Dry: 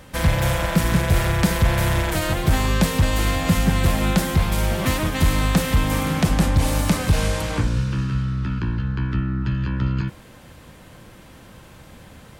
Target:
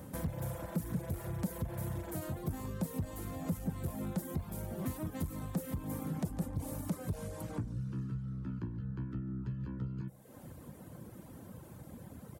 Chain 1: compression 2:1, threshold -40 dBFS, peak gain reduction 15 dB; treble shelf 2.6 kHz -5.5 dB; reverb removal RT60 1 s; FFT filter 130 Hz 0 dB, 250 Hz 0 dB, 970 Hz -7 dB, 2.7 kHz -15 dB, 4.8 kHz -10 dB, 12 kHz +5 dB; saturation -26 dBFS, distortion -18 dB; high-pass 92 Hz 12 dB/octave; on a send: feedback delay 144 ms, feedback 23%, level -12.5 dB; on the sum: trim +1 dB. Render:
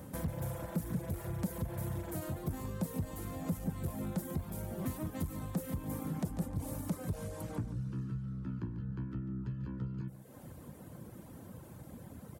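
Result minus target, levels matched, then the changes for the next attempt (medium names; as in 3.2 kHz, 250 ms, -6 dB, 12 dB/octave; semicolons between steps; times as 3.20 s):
echo-to-direct +8 dB
change: feedback delay 144 ms, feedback 23%, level -20.5 dB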